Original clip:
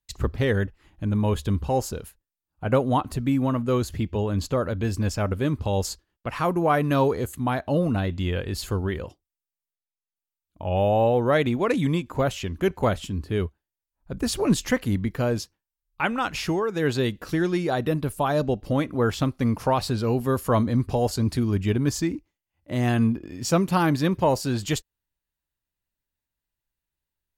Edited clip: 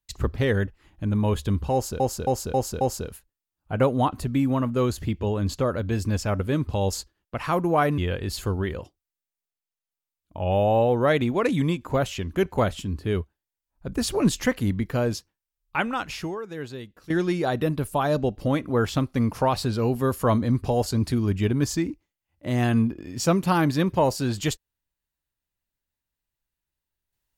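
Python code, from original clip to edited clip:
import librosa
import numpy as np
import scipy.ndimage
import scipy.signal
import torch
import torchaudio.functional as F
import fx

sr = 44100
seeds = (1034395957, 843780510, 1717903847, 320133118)

y = fx.edit(x, sr, fx.repeat(start_s=1.73, length_s=0.27, count=5),
    fx.cut(start_s=6.9, length_s=1.33),
    fx.fade_out_to(start_s=16.02, length_s=1.33, curve='qua', floor_db=-15.5), tone=tone)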